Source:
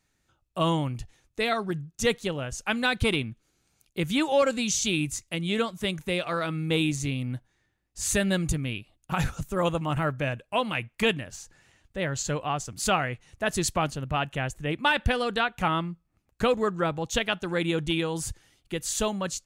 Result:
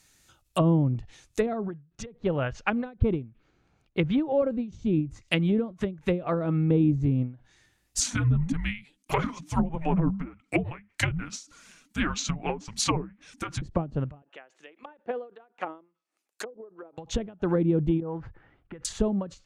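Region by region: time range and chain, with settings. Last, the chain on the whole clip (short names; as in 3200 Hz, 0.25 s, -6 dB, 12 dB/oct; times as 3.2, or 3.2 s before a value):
1.46–4.68 low-pass opened by the level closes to 1200 Hz, open at -18.5 dBFS + dynamic EQ 250 Hz, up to -3 dB, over -38 dBFS, Q 0.97
8–13.62 HPF 58 Hz 6 dB/oct + frequency shift -320 Hz + flange 1.7 Hz, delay 1.9 ms, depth 5.3 ms, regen +6%
14.22–16.98 HPF 340 Hz 24 dB/oct + treble ducked by the level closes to 460 Hz, closed at -24 dBFS + upward expander, over -46 dBFS
18–18.85 LPF 1600 Hz 24 dB/oct + compressor 3:1, threshold -37 dBFS
whole clip: treble ducked by the level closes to 380 Hz, closed at -24 dBFS; high shelf 2800 Hz +11.5 dB; ending taper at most 170 dB/s; gain +6 dB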